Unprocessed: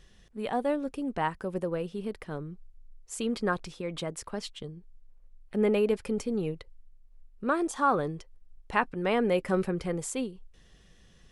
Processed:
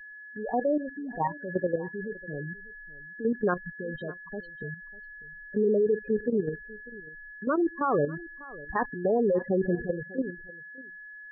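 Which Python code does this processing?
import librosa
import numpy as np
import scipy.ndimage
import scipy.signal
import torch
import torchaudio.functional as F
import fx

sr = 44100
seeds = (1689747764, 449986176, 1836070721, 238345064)

y = x + 10.0 ** (-41.0 / 20.0) * np.sin(2.0 * np.pi * 1700.0 * np.arange(len(x)) / sr)
y = scipy.signal.sosfilt(scipy.signal.butter(2, 3600.0, 'lowpass', fs=sr, output='sos'), y)
y = fx.room_shoebox(y, sr, seeds[0], volume_m3=570.0, walls='furnished', distance_m=0.3)
y = fx.spec_gate(y, sr, threshold_db=-10, keep='strong')
y = fx.level_steps(y, sr, step_db=10)
y = fx.dynamic_eq(y, sr, hz=420.0, q=1.5, threshold_db=-44.0, ratio=4.0, max_db=4)
y = y + 10.0 ** (-20.0 / 20.0) * np.pad(y, (int(596 * sr / 1000.0), 0))[:len(y)]
y = F.gain(torch.from_numpy(y), 4.0).numpy()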